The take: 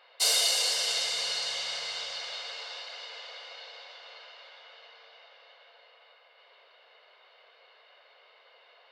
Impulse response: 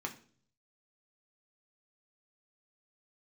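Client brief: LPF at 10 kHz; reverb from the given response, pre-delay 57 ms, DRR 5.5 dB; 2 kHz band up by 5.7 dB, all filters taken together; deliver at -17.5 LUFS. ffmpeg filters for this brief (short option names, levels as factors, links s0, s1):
-filter_complex "[0:a]lowpass=10000,equalizer=f=2000:t=o:g=7,asplit=2[s0][s1];[1:a]atrim=start_sample=2205,adelay=57[s2];[s1][s2]afir=irnorm=-1:irlink=0,volume=0.447[s3];[s0][s3]amix=inputs=2:normalize=0,volume=2.99"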